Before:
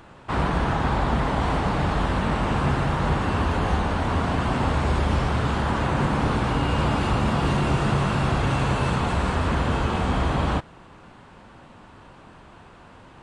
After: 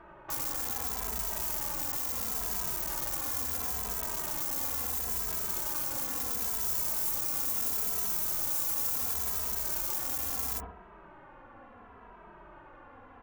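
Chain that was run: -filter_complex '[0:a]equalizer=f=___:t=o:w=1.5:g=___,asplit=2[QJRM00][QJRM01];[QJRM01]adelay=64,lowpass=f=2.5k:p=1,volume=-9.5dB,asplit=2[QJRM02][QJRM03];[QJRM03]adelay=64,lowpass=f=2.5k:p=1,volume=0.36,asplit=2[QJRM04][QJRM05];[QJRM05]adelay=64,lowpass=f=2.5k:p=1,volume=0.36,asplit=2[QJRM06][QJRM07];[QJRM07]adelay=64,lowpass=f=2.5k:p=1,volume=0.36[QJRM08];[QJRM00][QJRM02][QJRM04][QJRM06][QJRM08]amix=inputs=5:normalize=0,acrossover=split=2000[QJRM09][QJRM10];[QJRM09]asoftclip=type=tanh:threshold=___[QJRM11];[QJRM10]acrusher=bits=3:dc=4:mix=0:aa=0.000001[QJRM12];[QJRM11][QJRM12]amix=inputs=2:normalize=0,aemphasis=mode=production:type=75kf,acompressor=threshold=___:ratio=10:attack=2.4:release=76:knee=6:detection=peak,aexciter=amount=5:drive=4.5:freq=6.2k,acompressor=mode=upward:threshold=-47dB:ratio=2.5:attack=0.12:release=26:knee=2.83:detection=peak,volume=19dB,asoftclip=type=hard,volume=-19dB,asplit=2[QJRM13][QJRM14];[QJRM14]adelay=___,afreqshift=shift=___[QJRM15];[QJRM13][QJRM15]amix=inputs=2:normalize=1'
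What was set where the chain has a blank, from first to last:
130, -12.5, -27dB, -33dB, 2.7, -0.73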